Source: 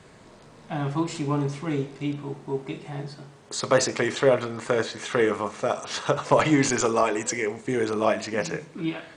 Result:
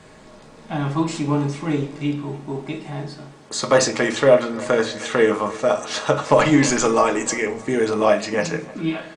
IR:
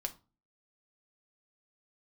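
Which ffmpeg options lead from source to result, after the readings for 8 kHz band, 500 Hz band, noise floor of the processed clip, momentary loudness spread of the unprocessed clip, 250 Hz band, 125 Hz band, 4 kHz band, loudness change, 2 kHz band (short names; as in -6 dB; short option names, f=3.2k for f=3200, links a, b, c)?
+4.5 dB, +5.5 dB, -46 dBFS, 12 LU, +5.5 dB, +4.0 dB, +4.5 dB, +5.0 dB, +5.0 dB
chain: -filter_complex "[0:a]asplit=2[a][b];[b]adelay=308,lowpass=f=3.2k:p=1,volume=-20dB,asplit=2[c][d];[d]adelay=308,lowpass=f=3.2k:p=1,volume=0.51,asplit=2[e][f];[f]adelay=308,lowpass=f=3.2k:p=1,volume=0.51,asplit=2[g][h];[h]adelay=308,lowpass=f=3.2k:p=1,volume=0.51[i];[a][c][e][g][i]amix=inputs=5:normalize=0[j];[1:a]atrim=start_sample=2205,asetrate=48510,aresample=44100[k];[j][k]afir=irnorm=-1:irlink=0,volume=6dB"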